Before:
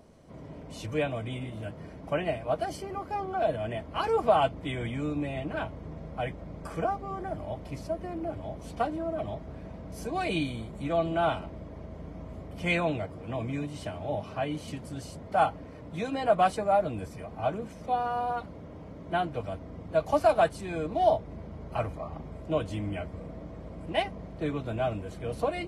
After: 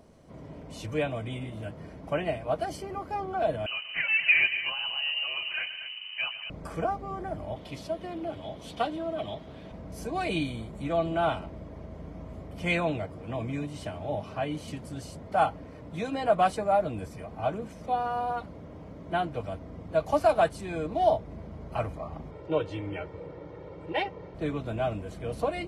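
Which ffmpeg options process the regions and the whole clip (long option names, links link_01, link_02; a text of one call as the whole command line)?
ffmpeg -i in.wav -filter_complex "[0:a]asettb=1/sr,asplit=3[link_01][link_02][link_03];[link_01]atrim=end=3.664[link_04];[link_02]atrim=start=3.66:end=6.5,asetpts=PTS-STARTPTS,afade=type=in:duration=0.004:curve=qsin,afade=type=out:start_time=2.836:duration=0.004:curve=qsin,aecho=1:1:131|236:0.224|0.266,atrim=end_sample=125244,lowpass=frequency=2600:width_type=q:width=0.5098,lowpass=frequency=2600:width_type=q:width=0.6013,lowpass=frequency=2600:width_type=q:width=0.9,lowpass=frequency=2600:width_type=q:width=2.563,afreqshift=-3100[link_05];[link_03]atrim=start=6.496[link_06];[link_04][link_05]acrossfade=duration=0.004:curve1=hsin:curve2=qsin[link_07];[link_07][link_06]acrossfade=duration=0.004:curve1=qsin:curve2=hsin,asettb=1/sr,asplit=3[link_08][link_09][link_10];[link_08]atrim=end=7.564[link_11];[link_09]atrim=start=7.56:end=9.72,asetpts=PTS-STARTPTS,afade=type=in:duration=0.004:curve=qsin,afade=type=out:start_time=2.156:duration=0.004:curve=qsin,highpass=frequency=150:poles=1,equalizer=frequency=3400:width_type=o:width=0.66:gain=12.5[link_12];[link_10]atrim=start=9.716[link_13];[link_11][link_12]acrossfade=duration=0.004:curve1=hsin:curve2=qsin[link_14];[link_14][link_13]acrossfade=duration=0.004:curve1=qsin:curve2=hsin,asettb=1/sr,asplit=3[link_15][link_16][link_17];[link_15]atrim=end=22.314[link_18];[link_16]atrim=start=22.31:end=24.35,asetpts=PTS-STARTPTS,afade=type=in:duration=0.004:curve=qsin,afade=type=out:start_time=2.036:duration=0.004:curve=qsin,highpass=140,lowpass=3900,aecho=1:1:2.2:0.95,atrim=end_sample=89964[link_19];[link_17]atrim=start=24.346[link_20];[link_18][link_19]acrossfade=duration=0.004:curve1=hsin:curve2=qsin[link_21];[link_21][link_20]acrossfade=duration=0.004:curve1=qsin:curve2=hsin" out.wav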